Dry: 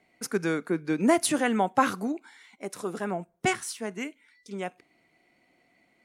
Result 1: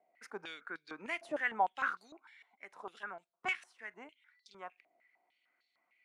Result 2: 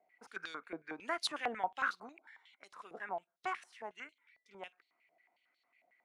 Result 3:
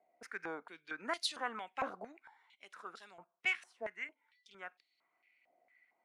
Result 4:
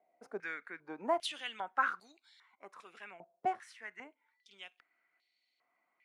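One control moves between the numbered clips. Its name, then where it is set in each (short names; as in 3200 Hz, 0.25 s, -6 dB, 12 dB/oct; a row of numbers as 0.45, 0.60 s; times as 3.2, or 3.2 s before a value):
stepped band-pass, rate: 6.6, 11, 4.4, 2.5 Hz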